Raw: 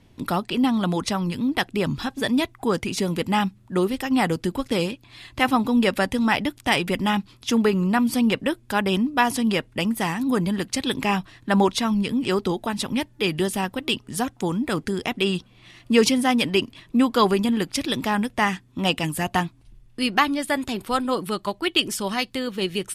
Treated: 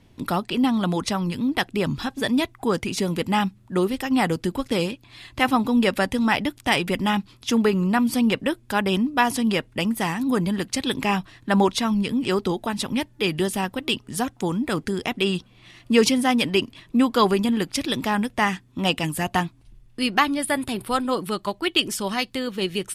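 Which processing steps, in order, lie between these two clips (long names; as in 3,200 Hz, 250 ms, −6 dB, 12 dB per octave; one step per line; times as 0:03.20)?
0:20.36–0:20.93: thirty-one-band graphic EQ 125 Hz +8 dB, 6,300 Hz −9 dB, 10,000 Hz +10 dB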